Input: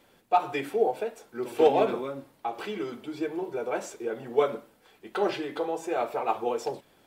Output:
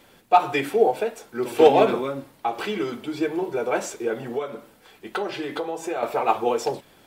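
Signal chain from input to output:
0:04.26–0:06.03: downward compressor 8 to 1, threshold −31 dBFS, peak gain reduction 14 dB
parametric band 500 Hz −2.5 dB 2.4 octaves
level +8.5 dB

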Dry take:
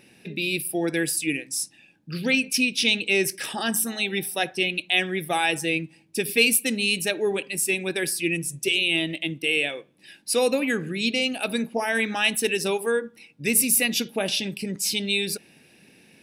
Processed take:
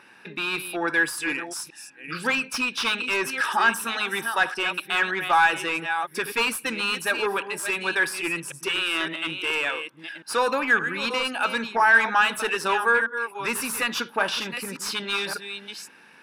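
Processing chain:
delay that plays each chunk backwards 568 ms, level −11 dB
mid-hump overdrive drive 17 dB, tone 3,300 Hz, clips at −6 dBFS
flat-topped bell 1,200 Hz +14 dB 1.1 octaves
level −8.5 dB

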